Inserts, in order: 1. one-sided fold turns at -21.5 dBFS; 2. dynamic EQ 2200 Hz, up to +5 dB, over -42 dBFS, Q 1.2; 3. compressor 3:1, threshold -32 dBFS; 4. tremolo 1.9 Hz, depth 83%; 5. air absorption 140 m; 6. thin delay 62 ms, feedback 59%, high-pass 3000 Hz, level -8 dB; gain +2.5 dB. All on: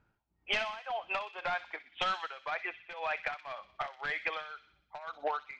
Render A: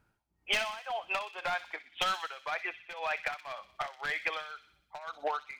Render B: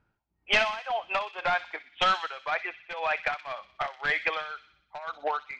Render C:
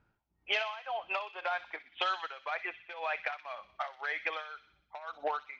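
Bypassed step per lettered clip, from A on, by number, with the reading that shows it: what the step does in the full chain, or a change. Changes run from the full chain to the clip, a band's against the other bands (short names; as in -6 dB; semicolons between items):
5, 4 kHz band +2.5 dB; 3, mean gain reduction 5.5 dB; 1, distortion -13 dB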